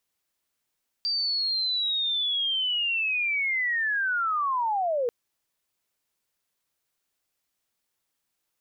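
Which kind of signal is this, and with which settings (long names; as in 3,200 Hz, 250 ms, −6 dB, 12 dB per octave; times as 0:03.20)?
glide linear 4,700 Hz → 460 Hz −24 dBFS → −23 dBFS 4.04 s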